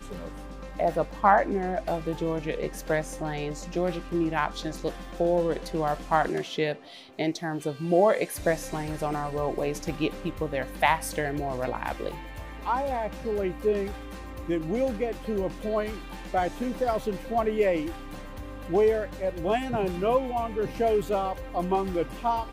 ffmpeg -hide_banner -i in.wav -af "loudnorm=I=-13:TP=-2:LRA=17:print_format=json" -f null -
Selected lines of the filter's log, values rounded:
"input_i" : "-28.0",
"input_tp" : "-6.6",
"input_lra" : "2.8",
"input_thresh" : "-38.4",